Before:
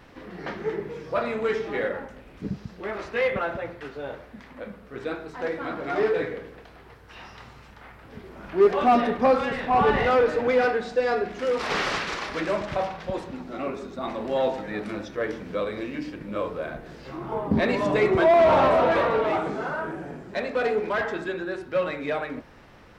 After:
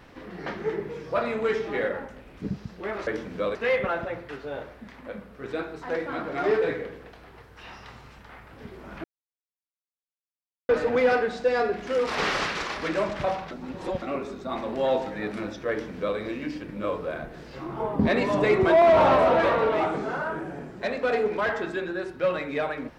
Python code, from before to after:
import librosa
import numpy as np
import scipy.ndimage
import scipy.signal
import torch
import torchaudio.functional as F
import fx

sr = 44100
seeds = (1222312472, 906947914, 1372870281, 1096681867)

y = fx.edit(x, sr, fx.silence(start_s=8.56, length_s=1.65),
    fx.reverse_span(start_s=13.03, length_s=0.51),
    fx.duplicate(start_s=15.22, length_s=0.48, to_s=3.07), tone=tone)